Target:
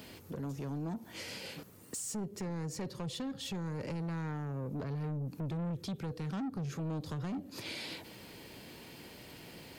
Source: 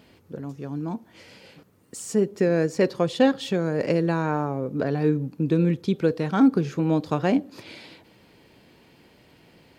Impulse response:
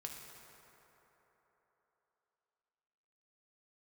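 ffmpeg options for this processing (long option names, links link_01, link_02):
-filter_complex "[0:a]highshelf=frequency=5200:gain=11,acrossover=split=160[link_01][link_02];[link_02]acompressor=threshold=-36dB:ratio=6[link_03];[link_01][link_03]amix=inputs=2:normalize=0,asoftclip=type=tanh:threshold=-33.5dB,alimiter=level_in=13dB:limit=-24dB:level=0:latency=1:release=82,volume=-13dB,volume=3dB"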